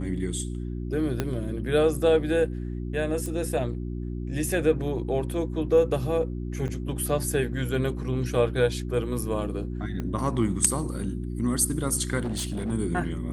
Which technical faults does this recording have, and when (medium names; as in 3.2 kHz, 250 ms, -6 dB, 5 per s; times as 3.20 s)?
hum 60 Hz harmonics 6 -32 dBFS
1.20 s: pop -12 dBFS
3.26 s: pop -21 dBFS
6.68–6.69 s: dropout 5.9 ms
10.00 s: pop -20 dBFS
12.19–12.72 s: clipped -25.5 dBFS